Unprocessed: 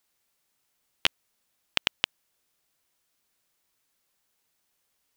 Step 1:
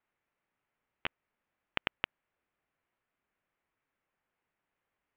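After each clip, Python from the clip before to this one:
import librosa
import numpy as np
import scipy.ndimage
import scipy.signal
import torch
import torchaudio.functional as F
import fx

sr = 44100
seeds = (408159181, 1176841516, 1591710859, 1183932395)

y = scipy.signal.sosfilt(scipy.signal.cheby2(4, 60, 7500.0, 'lowpass', fs=sr, output='sos'), x)
y = fx.over_compress(y, sr, threshold_db=-28.0, ratio=-0.5)
y = y * librosa.db_to_amplitude(-3.0)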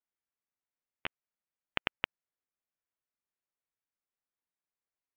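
y = fx.upward_expand(x, sr, threshold_db=-43.0, expansion=2.5)
y = y * librosa.db_to_amplitude(1.0)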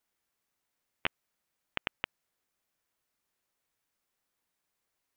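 y = fx.over_compress(x, sr, threshold_db=-38.0, ratio=-1.0)
y = y * librosa.db_to_amplitude(5.5)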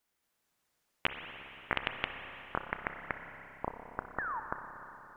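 y = fx.echo_pitch(x, sr, ms=222, semitones=-6, count=3, db_per_echo=-3.0)
y = fx.spec_paint(y, sr, seeds[0], shape='fall', start_s=4.18, length_s=0.22, low_hz=840.0, high_hz=1900.0, level_db=-38.0)
y = fx.rev_spring(y, sr, rt60_s=3.7, pass_ms=(30, 58), chirp_ms=65, drr_db=5.5)
y = y * librosa.db_to_amplitude(1.0)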